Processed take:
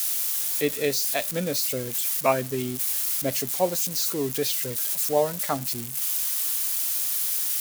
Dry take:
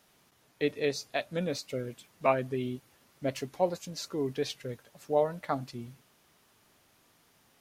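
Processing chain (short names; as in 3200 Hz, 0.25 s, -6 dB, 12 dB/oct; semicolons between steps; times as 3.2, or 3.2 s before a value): switching spikes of -28 dBFS; high shelf 6200 Hz +5 dB; gain +4 dB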